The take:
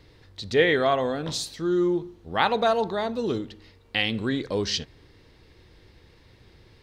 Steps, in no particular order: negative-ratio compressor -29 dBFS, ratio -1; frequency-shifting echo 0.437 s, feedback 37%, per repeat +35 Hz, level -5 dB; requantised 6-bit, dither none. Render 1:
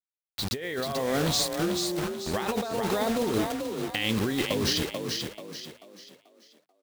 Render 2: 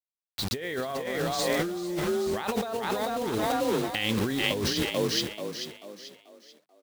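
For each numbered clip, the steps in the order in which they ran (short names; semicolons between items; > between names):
requantised > negative-ratio compressor > frequency-shifting echo; requantised > frequency-shifting echo > negative-ratio compressor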